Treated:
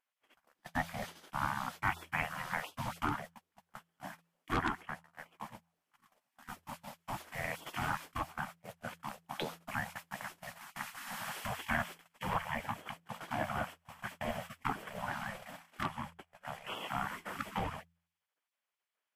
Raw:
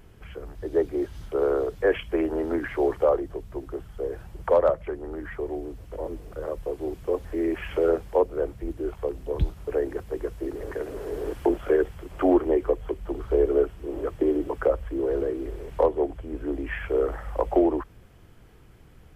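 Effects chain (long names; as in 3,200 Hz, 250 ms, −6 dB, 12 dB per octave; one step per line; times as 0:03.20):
gate on every frequency bin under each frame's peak −25 dB weak
noise gate −52 dBFS, range −33 dB
hum removal 84.08 Hz, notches 2
level +8 dB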